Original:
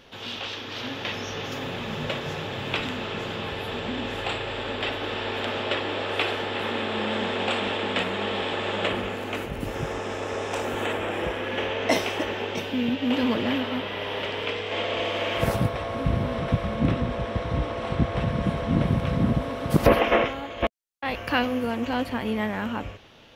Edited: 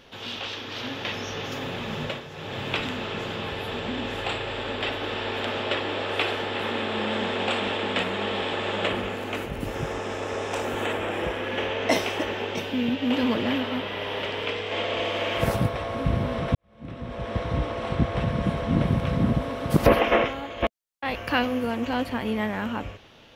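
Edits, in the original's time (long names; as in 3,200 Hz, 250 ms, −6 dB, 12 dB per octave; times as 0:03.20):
0:02.02–0:02.57: duck −11 dB, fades 0.27 s
0:16.55–0:17.36: fade in quadratic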